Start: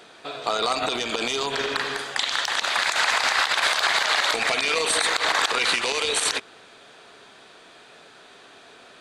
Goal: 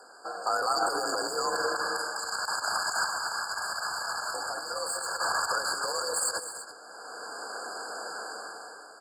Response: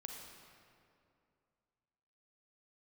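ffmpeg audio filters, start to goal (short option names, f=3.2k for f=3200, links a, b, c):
-filter_complex "[0:a]highpass=f=590:p=1,equalizer=f=11k:w=0.36:g=6,dynaudnorm=f=130:g=11:m=14.5dB,alimiter=limit=-12.5dB:level=0:latency=1:release=50,asoftclip=type=tanh:threshold=-16.5dB,asettb=1/sr,asplit=3[a][b][c];[a]atrim=end=3.064[d];[b]atrim=start=3.06:end=5.18,asetpts=PTS-STARTPTS,afade=t=in:d=0.004:c=qsin,afade=t=out:st=2.116:d=0.004:c=qsin,flanger=delay=8.8:depth=7.8:regen=74:speed=1:shape=triangular[e];[c]atrim=start=5.176[f];[d][e]acrossfade=d=0.004:c1=hsin:c2=qsin[g];[g][f]acrossfade=d=0.004:c1=qsin:c2=hsin,afreqshift=51,asuperstop=centerf=3400:order=12:qfactor=1.7,aecho=1:1:205|335:0.266|0.211,afftfilt=real='re*eq(mod(floor(b*sr/1024/1700),2),0)':imag='im*eq(mod(floor(b*sr/1024/1700),2),0)':win_size=1024:overlap=0.75"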